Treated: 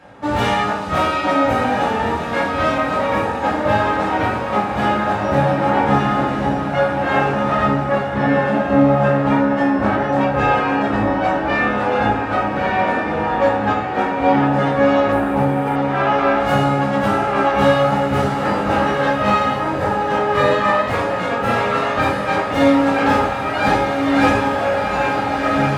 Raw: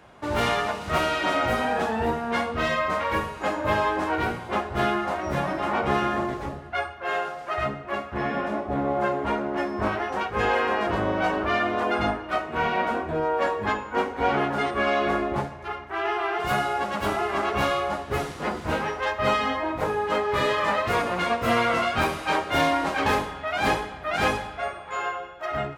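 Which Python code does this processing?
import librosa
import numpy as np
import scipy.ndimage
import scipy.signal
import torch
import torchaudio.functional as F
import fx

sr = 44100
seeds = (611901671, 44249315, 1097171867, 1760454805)

y = fx.high_shelf(x, sr, hz=8200.0, db=-8.0)
y = fx.echo_diffused(y, sr, ms=1426, feedback_pct=40, wet_db=-4.5)
y = fx.rider(y, sr, range_db=3, speed_s=2.0)
y = fx.rev_fdn(y, sr, rt60_s=0.57, lf_ratio=1.45, hf_ratio=0.55, size_ms=11.0, drr_db=-5.5)
y = fx.resample_linear(y, sr, factor=4, at=(15.12, 15.76))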